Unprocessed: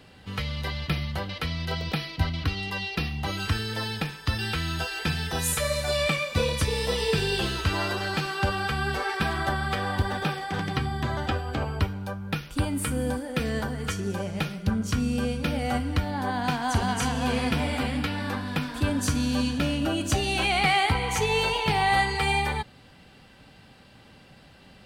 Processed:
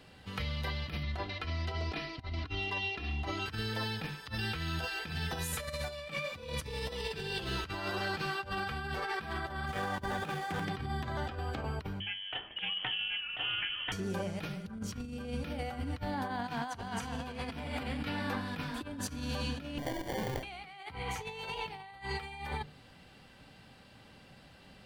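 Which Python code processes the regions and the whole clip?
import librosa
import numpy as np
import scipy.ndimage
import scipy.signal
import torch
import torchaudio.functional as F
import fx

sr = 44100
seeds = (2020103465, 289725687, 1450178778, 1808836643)

y = fx.chain(x, sr, fx.air_absorb(metres=64.0),
    fx.comb(ms=2.9, depth=0.72), at=(1.03, 3.46))
y = fx.chain(y, sr, fx.median_filter(points=9),
    fx.peak_eq(hz=9300.0, db=5.5, octaves=1.9), at=(9.67, 10.65))
y = fx.chain(y, sr, fx.highpass(hz=130.0, slope=6),
    fx.freq_invert(carrier_hz=3200),
    fx.doppler_dist(depth_ms=0.14), at=(12.0, 13.92))
y = fx.chain(y, sr, fx.highpass(hz=550.0, slope=12),
    fx.sample_hold(seeds[0], rate_hz=1300.0, jitter_pct=0), at=(19.78, 20.43))
y = fx.hum_notches(y, sr, base_hz=50, count=9)
y = fx.dynamic_eq(y, sr, hz=8600.0, q=0.84, threshold_db=-49.0, ratio=4.0, max_db=-6)
y = fx.over_compress(y, sr, threshold_db=-30.0, ratio=-0.5)
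y = F.gain(torch.from_numpy(y), -6.5).numpy()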